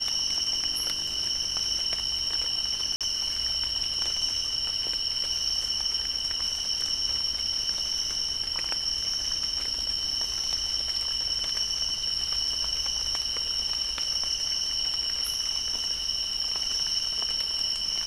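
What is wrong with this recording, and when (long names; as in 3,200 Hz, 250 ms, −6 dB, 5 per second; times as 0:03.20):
0:02.96–0:03.01: drop-out 47 ms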